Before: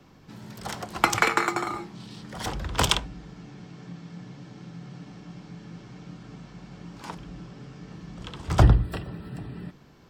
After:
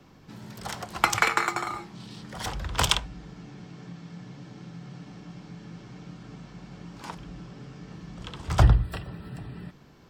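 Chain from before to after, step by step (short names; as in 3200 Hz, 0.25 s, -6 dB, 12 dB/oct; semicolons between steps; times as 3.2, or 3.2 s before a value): dynamic EQ 300 Hz, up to -7 dB, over -42 dBFS, Q 0.8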